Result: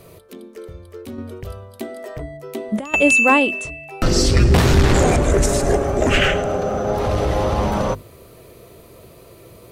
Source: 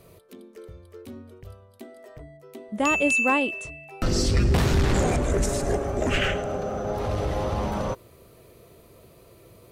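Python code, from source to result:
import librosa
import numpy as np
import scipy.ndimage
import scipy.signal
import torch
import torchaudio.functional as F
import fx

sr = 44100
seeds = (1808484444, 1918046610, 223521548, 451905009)

y = fx.hum_notches(x, sr, base_hz=50, count=5)
y = fx.over_compress(y, sr, threshold_db=-29.0, ratio=-0.5, at=(1.18, 2.94))
y = y * 10.0 ** (8.0 / 20.0)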